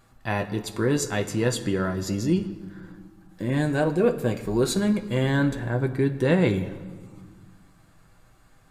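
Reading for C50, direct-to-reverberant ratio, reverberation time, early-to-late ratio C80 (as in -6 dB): 13.0 dB, 4.5 dB, 1.6 s, 14.5 dB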